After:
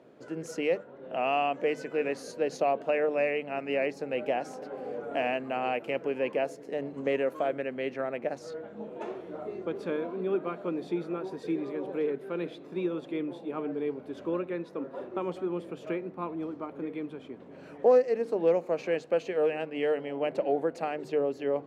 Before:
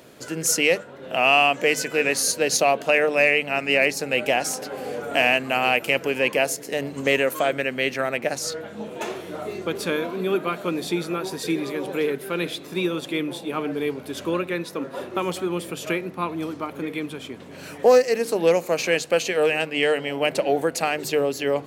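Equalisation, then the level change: band-pass filter 400 Hz, Q 0.57; -5.5 dB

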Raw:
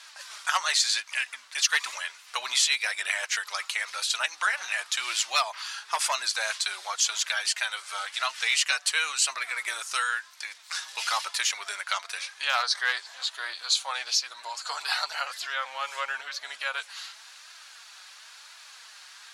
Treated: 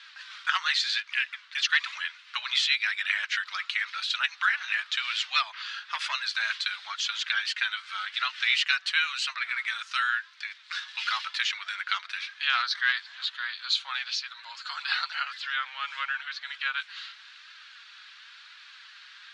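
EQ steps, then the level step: Chebyshev band-pass 1.4–3.7 kHz, order 2; +2.0 dB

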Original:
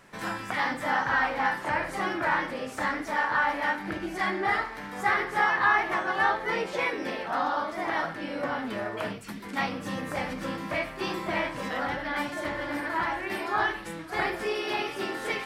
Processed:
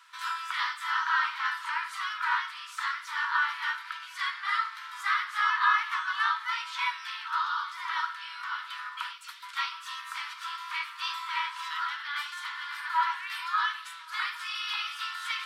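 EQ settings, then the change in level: rippled Chebyshev high-pass 940 Hz, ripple 9 dB; +5.5 dB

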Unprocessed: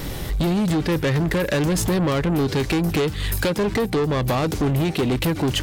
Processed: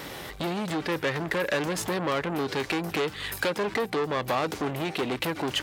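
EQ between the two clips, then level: high-pass 990 Hz 6 dB/octave; treble shelf 3.4 kHz -11 dB; +2.0 dB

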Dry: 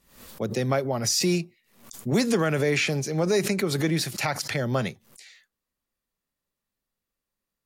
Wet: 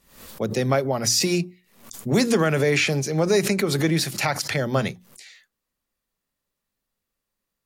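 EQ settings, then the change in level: hum notches 60/120/180/240/300/360 Hz; +3.5 dB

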